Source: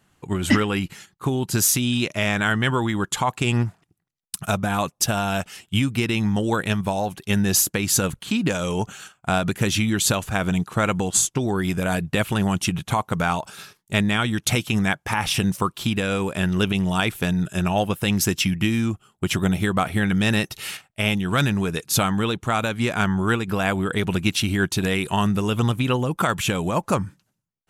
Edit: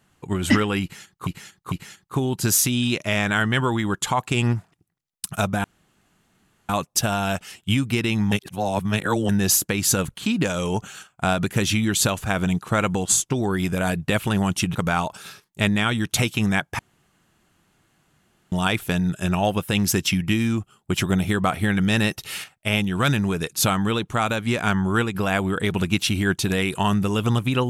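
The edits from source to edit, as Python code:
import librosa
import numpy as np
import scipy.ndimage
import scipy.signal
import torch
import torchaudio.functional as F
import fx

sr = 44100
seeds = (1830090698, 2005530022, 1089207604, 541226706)

y = fx.edit(x, sr, fx.repeat(start_s=0.82, length_s=0.45, count=3),
    fx.insert_room_tone(at_s=4.74, length_s=1.05),
    fx.reverse_span(start_s=6.37, length_s=0.97),
    fx.cut(start_s=12.8, length_s=0.28),
    fx.room_tone_fill(start_s=15.12, length_s=1.73), tone=tone)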